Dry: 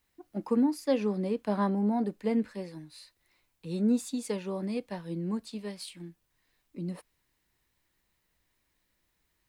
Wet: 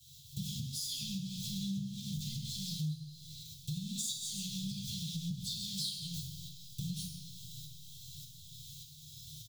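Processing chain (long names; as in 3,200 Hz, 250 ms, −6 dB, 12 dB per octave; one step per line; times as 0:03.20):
converter with a step at zero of −33.5 dBFS
multi-tap delay 46/132 ms −10/−8 dB
noise gate with hold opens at −27 dBFS
shaped tremolo saw up 1.7 Hz, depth 65%
Chebyshev band-stop filter 140–3,300 Hz, order 5
parametric band 160 Hz +14.5 dB 1.4 octaves
convolution reverb RT60 1.0 s, pre-delay 3 ms, DRR −11 dB
downward compressor 4 to 1, threshold −43 dBFS, peak gain reduction 18.5 dB
level +5 dB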